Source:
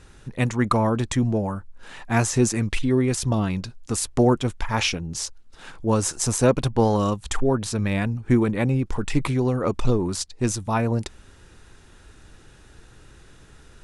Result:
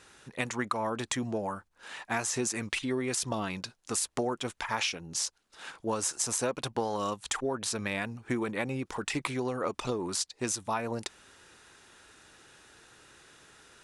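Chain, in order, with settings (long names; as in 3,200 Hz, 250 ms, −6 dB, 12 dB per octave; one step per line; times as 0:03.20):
high-pass filter 700 Hz 6 dB per octave
downward compressor 6 to 1, threshold −27 dBFS, peak gain reduction 9.5 dB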